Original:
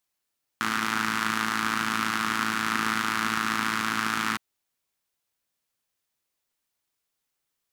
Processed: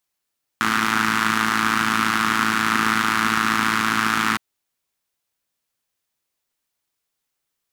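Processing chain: sample leveller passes 1; gain +4 dB

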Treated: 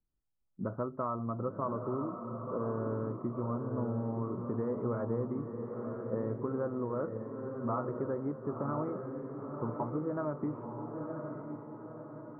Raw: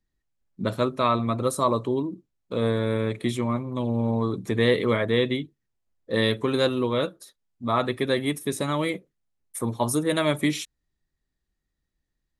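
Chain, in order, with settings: Chebyshev low-pass 1400 Hz, order 5; compressor, threshold -25 dBFS, peak gain reduction 8 dB; diffused feedback echo 0.992 s, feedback 50%, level -5 dB; gain -6 dB

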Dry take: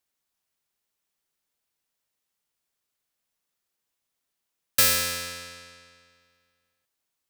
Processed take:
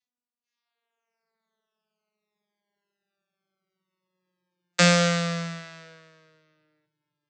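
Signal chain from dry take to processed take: vocoder on a gliding note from B3, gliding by -9 st; spectral noise reduction 20 dB; reverb RT60 0.45 s, pre-delay 3 ms, DRR 9 dB; gain +5.5 dB

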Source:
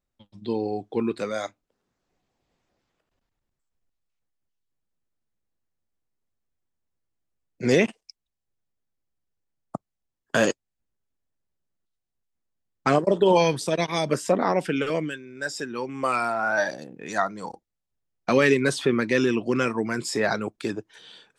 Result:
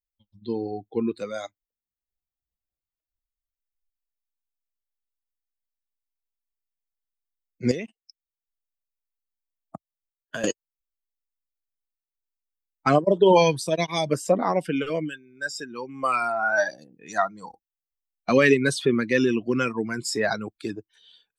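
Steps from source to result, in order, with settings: per-bin expansion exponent 1.5; 7.71–10.44 compressor 3:1, threshold -38 dBFS, peak gain reduction 16 dB; gain +3.5 dB

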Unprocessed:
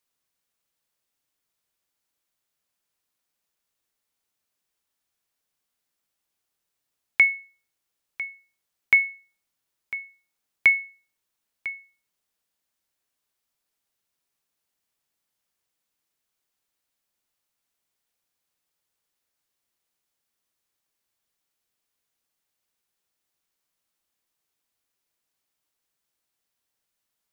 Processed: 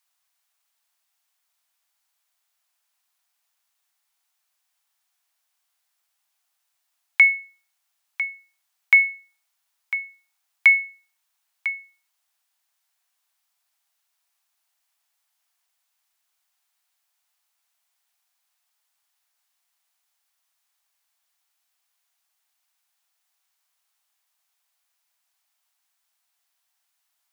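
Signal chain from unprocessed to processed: steep high-pass 650 Hz 72 dB/oct; in parallel at -0.5 dB: limiter -17 dBFS, peak gain reduction 10 dB

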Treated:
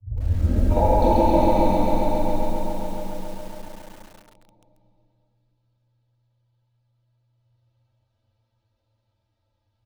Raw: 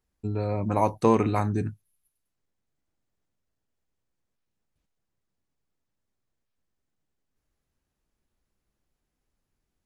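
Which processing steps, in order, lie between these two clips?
tape start at the beginning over 0.71 s; notch 1200 Hz, Q 5.7; comb 2.9 ms, depth 90%; de-hum 130.3 Hz, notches 4; compressor 12:1, threshold -20 dBFS, peak gain reduction 8 dB; graphic EQ 125/250/500/1000/2000/4000/8000 Hz +9/-11/+5/+11/-6/+9/-9 dB; envelope flanger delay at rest 9.1 ms, full sweep at -19.5 dBFS; frequency shift -120 Hz; air absorption 72 m; dark delay 0.116 s, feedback 84%, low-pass 510 Hz, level -21.5 dB; plate-style reverb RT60 4.3 s, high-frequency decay 1×, DRR -7 dB; lo-fi delay 0.137 s, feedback 80%, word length 7-bit, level -4 dB; gain -3 dB

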